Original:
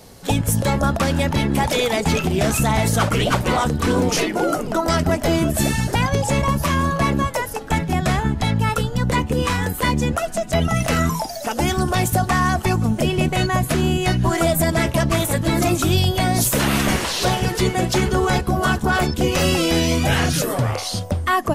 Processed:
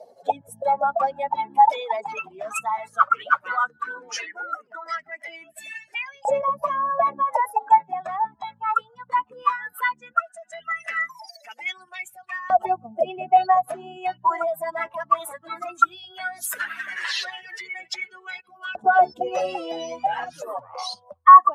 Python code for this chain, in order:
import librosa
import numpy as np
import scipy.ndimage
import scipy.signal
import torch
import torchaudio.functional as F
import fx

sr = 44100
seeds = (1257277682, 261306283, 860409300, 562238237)

y = fx.spec_expand(x, sr, power=2.2)
y = fx.filter_lfo_highpass(y, sr, shape='saw_up', hz=0.16, low_hz=620.0, high_hz=2600.0, q=6.6)
y = F.gain(torch.from_numpy(y), -4.5).numpy()